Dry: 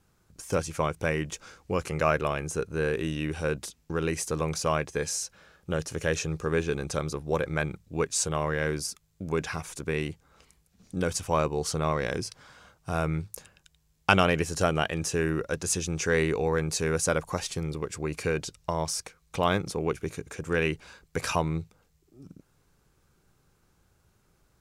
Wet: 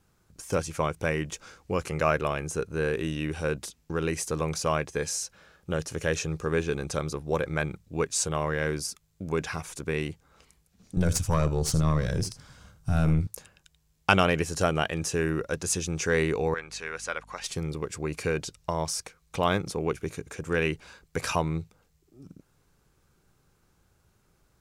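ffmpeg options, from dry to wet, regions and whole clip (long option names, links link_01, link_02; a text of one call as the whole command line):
ffmpeg -i in.wav -filter_complex "[0:a]asettb=1/sr,asplit=3[link_01][link_02][link_03];[link_01]atrim=end=10.974[link_04];[link_02]atrim=start=10.97:end=13.27,asetpts=PTS-STARTPTS,afade=type=in:duration=0.004:curve=qsin,afade=type=out:start_time=2.296:duration=0.004:curve=qsin,bass=frequency=250:gain=15,treble=frequency=4000:gain=7,aecho=1:1:79:0.188,atrim=end_sample=101430,aeval=exprs='(tanh(5.01*val(0)+0.7)-tanh(0.7))/5.01':channel_layout=same[link_05];[link_03]atrim=start=13.266[link_06];[link_04][link_05]acrossfade=duration=0.004:curve1=hsin:curve2=qsin[link_07];[link_07][link_06]acrossfade=duration=0.004:curve1=qsin:curve2=hsin,asettb=1/sr,asplit=3[link_08][link_09][link_10];[link_08]atrim=end=16.544[link_11];[link_09]atrim=start=16.54:end=17.44,asetpts=PTS-STARTPTS,afade=type=in:duration=0.004:curve=qsin,afade=type=out:start_time=0.896:duration=0.004:curve=qsin,bandpass=frequency=2100:width_type=q:width=0.9,aeval=exprs='val(0)+0.002*(sin(2*PI*50*n/s)+sin(2*PI*2*50*n/s)/2+sin(2*PI*3*50*n/s)/3+sin(2*PI*4*50*n/s)/4+sin(2*PI*5*50*n/s)/5)':channel_layout=same[link_12];[link_10]atrim=start=17.436[link_13];[link_11][link_12]acrossfade=duration=0.004:curve1=hsin:curve2=qsin[link_14];[link_14][link_13]acrossfade=duration=0.004:curve1=qsin:curve2=hsin" out.wav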